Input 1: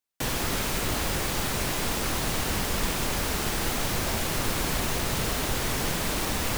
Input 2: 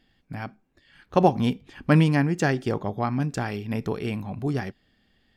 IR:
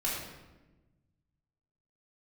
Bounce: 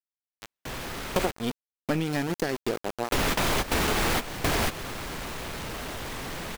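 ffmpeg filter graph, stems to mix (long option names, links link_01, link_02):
-filter_complex "[0:a]bass=frequency=250:gain=-2,treble=frequency=4000:gain=-8,aeval=exprs='0.158*sin(PI/2*3.55*val(0)/0.158)':channel_layout=same,adelay=450,volume=0dB,asplit=3[link_01][link_02][link_03];[link_01]atrim=end=1.31,asetpts=PTS-STARTPTS,afade=type=out:start_time=1.306:duration=0.004:curve=hsin[link_04];[link_02]atrim=start=1.31:end=3.12,asetpts=PTS-STARTPTS,volume=0[link_05];[link_03]atrim=start=3.12,asetpts=PTS-STARTPTS,afade=type=in:duration=0.004:curve=hsin[link_06];[link_04][link_05][link_06]concat=n=3:v=0:a=1[link_07];[1:a]equalizer=frequency=125:width_type=o:width=1:gain=-7,equalizer=frequency=500:width_type=o:width=1:gain=5,equalizer=frequency=1000:width_type=o:width=1:gain=-7,equalizer=frequency=4000:width_type=o:width=1:gain=5,aeval=exprs='val(0)*gte(abs(val(0)),0.0596)':channel_layout=same,aeval=exprs='0.668*(cos(1*acos(clip(val(0)/0.668,-1,1)))-cos(1*PI/2))+0.299*(cos(2*acos(clip(val(0)/0.668,-1,1)))-cos(2*PI/2))':channel_layout=same,volume=-1dB,asplit=2[link_08][link_09];[link_09]apad=whole_len=309699[link_10];[link_07][link_10]sidechaingate=range=-16dB:threshold=-39dB:ratio=16:detection=peak[link_11];[link_11][link_08]amix=inputs=2:normalize=0,acompressor=threshold=-23dB:ratio=6"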